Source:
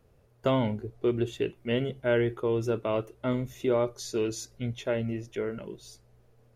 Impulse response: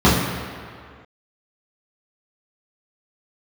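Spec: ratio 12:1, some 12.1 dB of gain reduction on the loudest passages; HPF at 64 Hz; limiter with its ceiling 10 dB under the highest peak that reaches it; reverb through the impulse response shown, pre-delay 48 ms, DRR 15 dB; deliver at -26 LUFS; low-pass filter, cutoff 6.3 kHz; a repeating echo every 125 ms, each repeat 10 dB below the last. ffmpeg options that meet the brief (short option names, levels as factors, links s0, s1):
-filter_complex "[0:a]highpass=64,lowpass=6300,acompressor=threshold=0.0224:ratio=12,alimiter=level_in=2.51:limit=0.0631:level=0:latency=1,volume=0.398,aecho=1:1:125|250|375|500:0.316|0.101|0.0324|0.0104,asplit=2[s0][s1];[1:a]atrim=start_sample=2205,adelay=48[s2];[s1][s2]afir=irnorm=-1:irlink=0,volume=0.00944[s3];[s0][s3]amix=inputs=2:normalize=0,volume=5.62"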